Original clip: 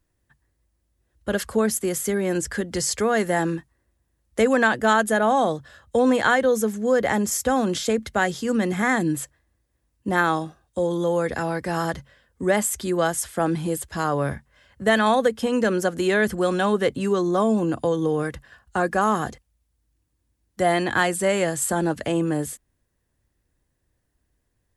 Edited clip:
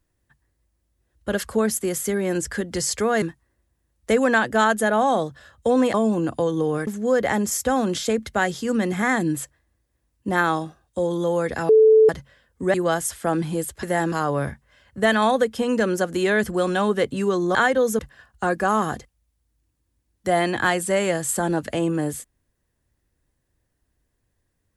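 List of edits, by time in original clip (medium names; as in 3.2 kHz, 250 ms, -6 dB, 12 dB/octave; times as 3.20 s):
3.22–3.51 s: move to 13.96 s
6.23–6.67 s: swap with 17.39–18.32 s
11.49–11.89 s: bleep 438 Hz -9.5 dBFS
12.54–12.87 s: delete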